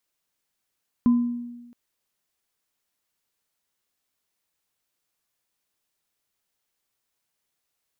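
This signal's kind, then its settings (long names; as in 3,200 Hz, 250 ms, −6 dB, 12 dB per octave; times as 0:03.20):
inharmonic partials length 0.67 s, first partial 240 Hz, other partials 1,020 Hz, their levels −20 dB, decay 1.17 s, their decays 0.50 s, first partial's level −13 dB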